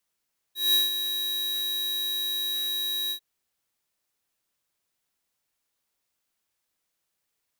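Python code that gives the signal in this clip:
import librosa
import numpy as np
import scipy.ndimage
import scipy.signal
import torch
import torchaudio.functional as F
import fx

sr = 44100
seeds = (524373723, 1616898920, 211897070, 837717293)

y = fx.adsr_tone(sr, wave='square', hz=3850.0, attack_ms=186.0, decay_ms=161.0, sustain_db=-9.0, held_s=2.56, release_ms=84.0, level_db=-20.0)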